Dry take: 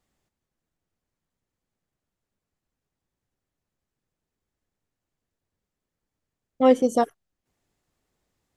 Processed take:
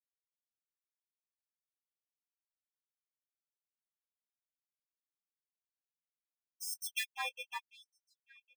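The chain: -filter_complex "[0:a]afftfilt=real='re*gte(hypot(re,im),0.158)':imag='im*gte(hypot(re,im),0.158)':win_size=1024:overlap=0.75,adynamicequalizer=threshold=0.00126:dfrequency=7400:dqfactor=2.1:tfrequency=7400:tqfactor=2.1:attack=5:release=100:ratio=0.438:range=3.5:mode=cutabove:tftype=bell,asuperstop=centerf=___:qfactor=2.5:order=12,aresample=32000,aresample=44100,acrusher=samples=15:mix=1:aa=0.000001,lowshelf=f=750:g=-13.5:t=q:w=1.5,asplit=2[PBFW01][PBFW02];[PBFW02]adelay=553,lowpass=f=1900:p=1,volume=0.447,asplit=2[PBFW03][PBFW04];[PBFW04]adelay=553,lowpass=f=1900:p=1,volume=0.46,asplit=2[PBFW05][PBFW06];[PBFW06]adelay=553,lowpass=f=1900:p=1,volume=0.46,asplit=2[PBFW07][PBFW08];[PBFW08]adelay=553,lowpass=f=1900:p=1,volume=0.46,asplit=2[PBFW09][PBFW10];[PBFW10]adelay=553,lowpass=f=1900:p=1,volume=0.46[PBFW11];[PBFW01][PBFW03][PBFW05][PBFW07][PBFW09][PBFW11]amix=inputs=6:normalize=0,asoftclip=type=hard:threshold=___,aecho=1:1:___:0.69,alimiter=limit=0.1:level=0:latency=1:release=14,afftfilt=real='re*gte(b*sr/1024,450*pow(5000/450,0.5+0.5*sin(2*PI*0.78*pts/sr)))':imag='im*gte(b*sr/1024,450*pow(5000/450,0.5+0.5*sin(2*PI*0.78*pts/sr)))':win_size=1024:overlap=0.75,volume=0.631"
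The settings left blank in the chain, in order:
640, 0.1, 1.2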